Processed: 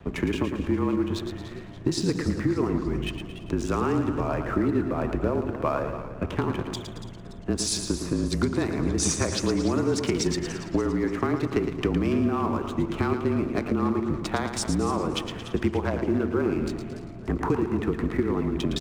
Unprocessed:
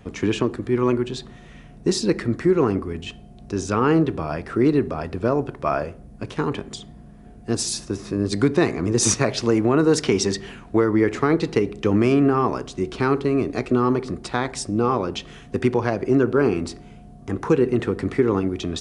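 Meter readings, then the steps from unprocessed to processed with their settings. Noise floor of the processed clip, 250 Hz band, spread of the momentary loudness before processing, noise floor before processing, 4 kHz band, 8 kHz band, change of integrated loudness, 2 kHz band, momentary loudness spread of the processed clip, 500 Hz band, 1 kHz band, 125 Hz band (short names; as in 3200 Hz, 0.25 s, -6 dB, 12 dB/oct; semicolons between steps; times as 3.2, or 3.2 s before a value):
-39 dBFS, -4.0 dB, 12 LU, -44 dBFS, -3.0 dB, -4.5 dB, -5.0 dB, -5.0 dB, 7 LU, -6.5 dB, -5.0 dB, -3.0 dB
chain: Wiener smoothing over 9 samples; HPF 41 Hz; compressor, threshold -26 dBFS, peak gain reduction 13 dB; frequency shift -32 Hz; crossover distortion -56.5 dBFS; on a send: feedback echo 0.112 s, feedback 46%, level -8 dB; on the sum: warbling echo 0.288 s, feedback 48%, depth 131 cents, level -13 dB; gain +4 dB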